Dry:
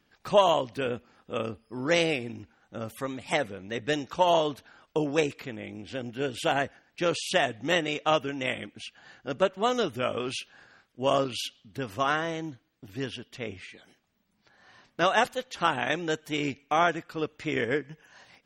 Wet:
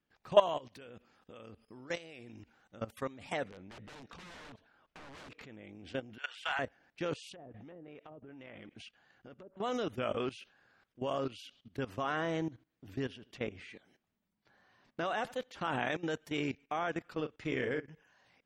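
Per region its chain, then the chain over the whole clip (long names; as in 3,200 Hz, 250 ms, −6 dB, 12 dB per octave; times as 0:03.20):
0:00.57–0:02.81: high-shelf EQ 2,600 Hz +8 dB + downward compressor 1.5 to 1, threshold −51 dBFS
0:03.44–0:05.42: downward compressor 10 to 1, threshold −24 dBFS + wrap-around overflow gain 29.5 dB + high-frequency loss of the air 78 metres
0:06.18–0:06.59: high-pass filter 1,000 Hz 24 dB per octave + mid-hump overdrive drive 10 dB, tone 3,500 Hz, clips at −14.5 dBFS
0:07.32–0:09.57: treble cut that deepens with the level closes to 450 Hz, closed at −20.5 dBFS + downward compressor 12 to 1, threshold −39 dBFS
0:11.89–0:15.85: parametric band 240 Hz +2 dB 2.5 octaves + repeating echo 79 ms, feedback 16%, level −24 dB
0:17.15–0:17.88: double-tracking delay 39 ms −8 dB + transient designer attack +6 dB, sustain −5 dB
whole clip: high-shelf EQ 4,300 Hz −7.5 dB; output level in coarse steps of 17 dB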